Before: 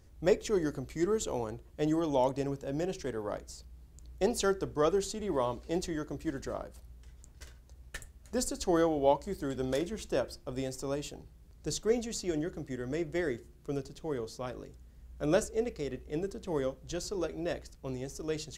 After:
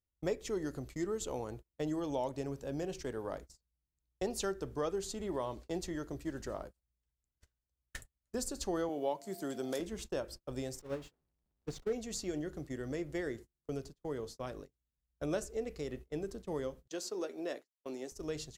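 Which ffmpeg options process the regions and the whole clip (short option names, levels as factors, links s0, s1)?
-filter_complex "[0:a]asettb=1/sr,asplit=3[s0][s1][s2];[s0]atrim=end=8.894[s3];[s1]atrim=start=8.89:end=9.8,asetpts=PTS-STARTPTS,afade=t=in:d=0.004:c=qsin,afade=t=out:st=0.906:d=0.004:c=qsin,highpass=f=160:w=0.5412,highpass=f=160:w=1.3066,highshelf=f=6700:g=6.5,aeval=exprs='val(0)+0.00355*sin(2*PI*690*n/s)':c=same[s4];[s2]atrim=start=9.796[s5];[s3][s4]acrossfade=d=0.004:c1=hsin:c2=qsin[s6];[s6][s5]acrossfade=d=0.004:c1=qsin:c2=hsin,asettb=1/sr,asplit=3[s7][s8][s9];[s7]atrim=end=10.794[s10];[s8]atrim=start=10.79:end=11.93,asetpts=PTS-STARTPTS,afade=t=in:d=0.004:c=qsin,afade=t=out:st=1.136:d=0.004:c=qsin,aeval=exprs='val(0)+0.5*0.0266*sgn(val(0))':c=same,agate=range=0.251:threshold=0.0316:ratio=16:release=100:detection=peak,lowpass=f=2200:p=1[s11];[s9]atrim=start=11.926[s12];[s10][s11]acrossfade=d=0.004:c1=hsin:c2=qsin[s13];[s13][s12]acrossfade=d=0.004:c1=qsin:c2=hsin,asettb=1/sr,asplit=3[s14][s15][s16];[s14]atrim=end=16.884[s17];[s15]atrim=start=16.88:end=18.12,asetpts=PTS-STARTPTS,afade=t=in:d=0.004:c=qsin,afade=t=out:st=1.236:d=0.004:c=qsin,agate=range=0.0224:threshold=0.00794:ratio=3:release=100:detection=peak,highpass=f=240:w=0.5412,highpass=f=240:w=1.3066[s18];[s16]atrim=start=18.116[s19];[s17][s18]acrossfade=d=0.004:c1=hsin:c2=qsin[s20];[s20][s19]acrossfade=d=0.004:c1=qsin:c2=hsin,agate=range=0.0224:threshold=0.00708:ratio=16:detection=peak,highshelf=f=11000:g=4,acompressor=threshold=0.02:ratio=2,volume=0.794"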